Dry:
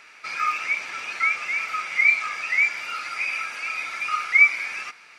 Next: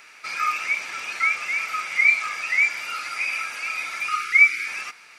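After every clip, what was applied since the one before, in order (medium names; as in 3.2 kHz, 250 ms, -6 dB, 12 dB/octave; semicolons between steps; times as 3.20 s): treble shelf 8.6 kHz +12 dB; time-frequency box 4.09–4.67 s, 460–1200 Hz -28 dB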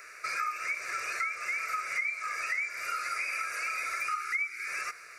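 static phaser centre 870 Hz, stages 6; compression 8:1, threshold -33 dBFS, peak gain reduction 18 dB; trim +3 dB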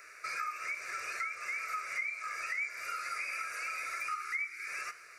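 flange 0.76 Hz, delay 8.6 ms, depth 7.1 ms, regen +80%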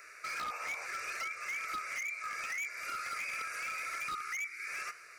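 painted sound noise, 0.40–0.87 s, 450–1500 Hz -49 dBFS; wavefolder -32.5 dBFS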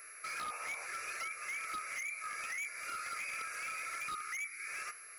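whistle 11 kHz -49 dBFS; trim -2.5 dB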